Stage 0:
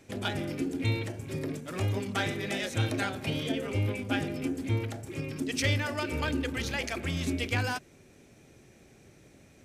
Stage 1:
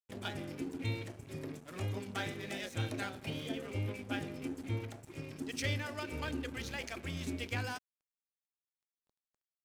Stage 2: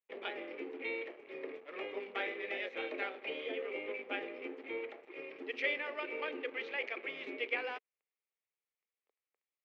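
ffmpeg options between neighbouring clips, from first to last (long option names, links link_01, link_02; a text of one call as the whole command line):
ffmpeg -i in.wav -af "aeval=exprs='sgn(val(0))*max(abs(val(0))-0.00501,0)':channel_layout=same,volume=-7dB" out.wav
ffmpeg -i in.wav -af "highpass=frequency=420:width=0.5412,highpass=frequency=420:width=1.3066,equalizer=frequency=450:width_type=q:width=4:gain=5,equalizer=frequency=680:width_type=q:width=4:gain=-6,equalizer=frequency=960:width_type=q:width=4:gain=-6,equalizer=frequency=1500:width_type=q:width=4:gain=-8,equalizer=frequency=2200:width_type=q:width=4:gain=4,lowpass=frequency=2700:width=0.5412,lowpass=frequency=2700:width=1.3066,volume=5dB" out.wav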